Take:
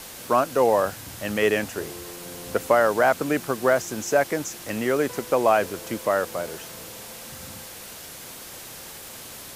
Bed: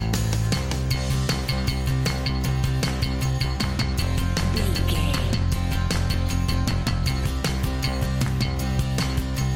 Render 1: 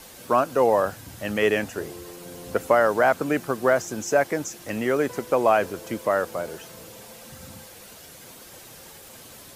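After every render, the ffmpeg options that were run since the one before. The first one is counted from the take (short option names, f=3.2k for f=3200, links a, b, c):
-af "afftdn=nr=7:nf=-41"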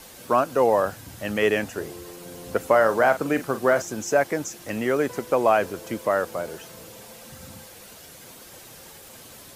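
-filter_complex "[0:a]asettb=1/sr,asplit=3[a][b][c];[a]atrim=end=2.704[d];[b]atrim=start=2.7:end=3.82,asetpts=PTS-STARTPTS,afade=t=in:d=0.004:c=qsin,afade=t=out:st=1.116:d=0.004:c=qsin,asplit=2[e][f];[f]adelay=44,volume=-11.5dB[g];[e][g]amix=inputs=2:normalize=0,atrim=end_sample=49392[h];[c]atrim=start=3.816[i];[d][h]acrossfade=d=0.004:c1=hsin:c2=qsin[j];[j][i]acrossfade=d=0.004:c1=qsin:c2=hsin"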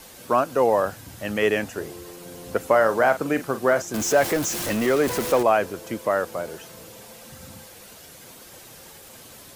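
-filter_complex "[0:a]asettb=1/sr,asplit=3[a][b][c];[a]atrim=end=3.944[d];[b]atrim=start=3.94:end=5.43,asetpts=PTS-STARTPTS,afade=t=in:d=0.004:c=qsin,afade=t=out:st=1.486:d=0.004:c=qsin,aeval=exprs='val(0)+0.5*0.0631*sgn(val(0))':c=same[e];[c]atrim=start=5.426[f];[d][e]acrossfade=d=0.004:c1=hsin:c2=qsin[g];[g][f]acrossfade=d=0.004:c1=qsin:c2=hsin"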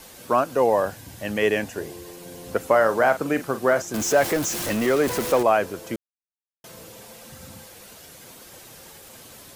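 -filter_complex "[0:a]asettb=1/sr,asplit=3[a][b][c];[a]atrim=end=0.564[d];[b]atrim=start=0.56:end=2.47,asetpts=PTS-STARTPTS,afade=t=in:d=0.004:c=qsin,afade=t=out:st=1.906:d=0.004:c=qsin,bandreject=f=1.3k:w=7.2[e];[c]atrim=start=2.466[f];[d][e]acrossfade=d=0.004:c1=hsin:c2=qsin[g];[g][f]acrossfade=d=0.004:c1=qsin:c2=hsin,asplit=3[h][i][j];[h]atrim=end=5.96,asetpts=PTS-STARTPTS,afade=t=out:st=5.956:d=0.004:c=hsin[k];[i]atrim=start=5.96:end=6.64,asetpts=PTS-STARTPTS,volume=0[l];[j]atrim=start=6.64,asetpts=PTS-STARTPTS,afade=t=in:d=0.004:c=hsin[m];[k][l][m]concat=n=3:v=0:a=1"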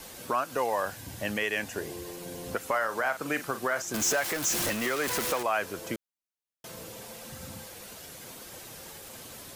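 -filter_complex "[0:a]acrossover=split=970[a][b];[a]acompressor=threshold=-31dB:ratio=6[c];[c][b]amix=inputs=2:normalize=0,alimiter=limit=-17dB:level=0:latency=1:release=179"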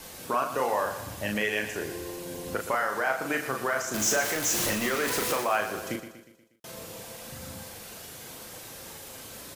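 -filter_complex "[0:a]asplit=2[a][b];[b]adelay=38,volume=-5dB[c];[a][c]amix=inputs=2:normalize=0,asplit=2[d][e];[e]aecho=0:1:120|240|360|480|600:0.282|0.144|0.0733|0.0374|0.0191[f];[d][f]amix=inputs=2:normalize=0"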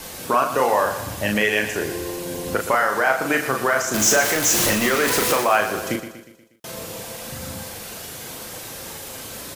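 -af "volume=8.5dB"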